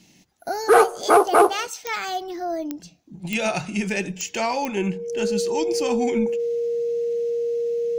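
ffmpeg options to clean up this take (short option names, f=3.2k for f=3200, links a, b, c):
-af "adeclick=t=4,bandreject=f=470:w=30"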